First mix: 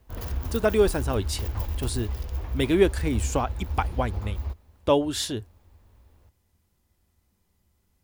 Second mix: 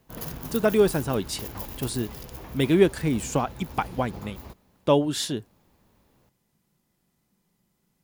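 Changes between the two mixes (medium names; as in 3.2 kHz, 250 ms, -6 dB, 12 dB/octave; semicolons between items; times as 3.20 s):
background: add peaking EQ 12 kHz +8 dB 1.6 oct; master: add resonant low shelf 110 Hz -10 dB, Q 3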